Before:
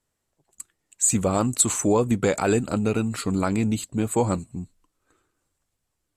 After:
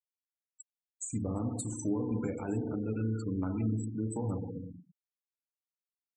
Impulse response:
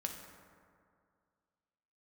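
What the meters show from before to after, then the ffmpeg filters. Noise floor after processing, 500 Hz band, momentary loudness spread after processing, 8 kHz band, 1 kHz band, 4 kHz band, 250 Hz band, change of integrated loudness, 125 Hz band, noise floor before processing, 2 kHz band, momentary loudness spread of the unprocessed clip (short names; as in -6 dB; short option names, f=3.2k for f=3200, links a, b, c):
under -85 dBFS, -14.5 dB, 6 LU, -19.5 dB, -18.0 dB, under -25 dB, -9.0 dB, -12.0 dB, -7.0 dB, -79 dBFS, -20.0 dB, 6 LU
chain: -filter_complex "[1:a]atrim=start_sample=2205,asetrate=70560,aresample=44100[a];[0:a][a]afir=irnorm=-1:irlink=0,afftfilt=real='re*gte(hypot(re,im),0.0398)':imag='im*gte(hypot(re,im),0.0398)':win_size=1024:overlap=0.75,acrossover=split=270[b][c];[c]acompressor=threshold=-34dB:ratio=10[d];[b][d]amix=inputs=2:normalize=0,volume=-4dB"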